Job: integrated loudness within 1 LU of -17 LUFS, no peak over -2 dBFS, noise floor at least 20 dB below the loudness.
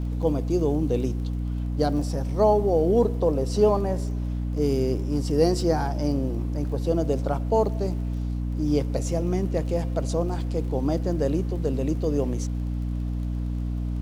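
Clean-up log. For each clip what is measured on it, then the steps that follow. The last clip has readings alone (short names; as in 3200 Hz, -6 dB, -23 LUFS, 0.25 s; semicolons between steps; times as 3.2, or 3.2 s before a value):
ticks 27/s; hum 60 Hz; harmonics up to 300 Hz; hum level -25 dBFS; loudness -25.5 LUFS; peak -7.0 dBFS; loudness target -17.0 LUFS
-> de-click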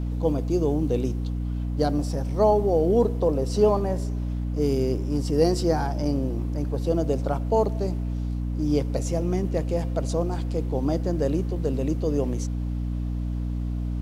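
ticks 0/s; hum 60 Hz; harmonics up to 300 Hz; hum level -25 dBFS
-> notches 60/120/180/240/300 Hz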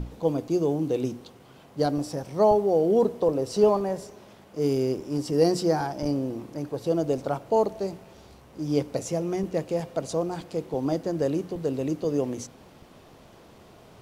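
hum none; loudness -26.5 LUFS; peak -8.5 dBFS; loudness target -17.0 LUFS
-> gain +9.5 dB; limiter -2 dBFS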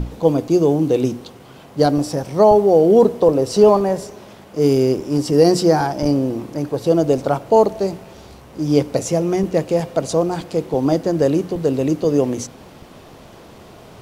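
loudness -17.0 LUFS; peak -2.0 dBFS; noise floor -42 dBFS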